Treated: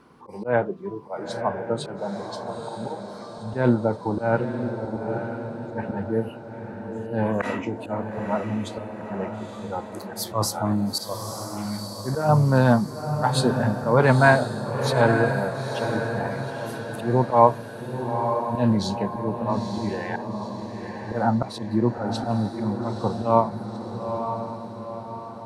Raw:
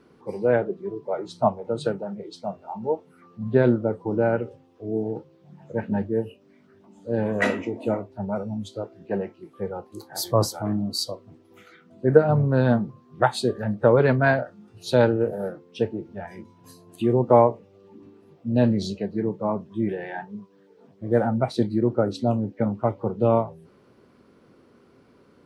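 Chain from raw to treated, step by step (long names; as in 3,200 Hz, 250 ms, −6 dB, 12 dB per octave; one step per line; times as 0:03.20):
graphic EQ with 15 bands 400 Hz −5 dB, 1,000 Hz +8 dB, 10,000 Hz +4 dB
volume swells 146 ms
feedback delay with all-pass diffusion 922 ms, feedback 51%, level −6.5 dB
level +2.5 dB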